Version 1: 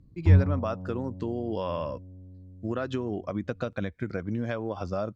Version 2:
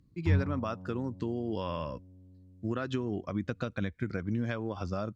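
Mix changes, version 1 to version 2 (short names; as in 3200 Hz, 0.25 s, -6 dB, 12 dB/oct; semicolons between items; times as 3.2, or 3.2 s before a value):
background: add tilt +2.5 dB/oct; master: add bell 620 Hz -6.5 dB 1.3 oct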